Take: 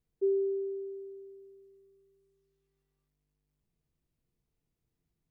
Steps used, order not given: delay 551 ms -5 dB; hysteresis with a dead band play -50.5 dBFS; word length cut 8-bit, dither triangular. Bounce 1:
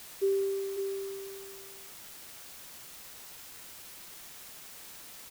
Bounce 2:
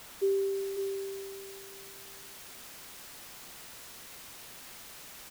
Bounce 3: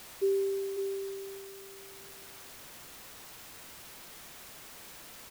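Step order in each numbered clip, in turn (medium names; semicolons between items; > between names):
delay > hysteresis with a dead band > word length cut; word length cut > delay > hysteresis with a dead band; delay > word length cut > hysteresis with a dead band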